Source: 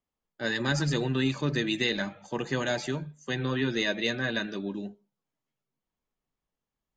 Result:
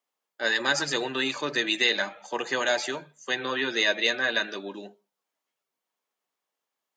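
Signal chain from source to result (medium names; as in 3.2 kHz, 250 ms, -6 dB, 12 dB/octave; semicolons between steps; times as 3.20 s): high-pass 520 Hz 12 dB/octave; trim +6 dB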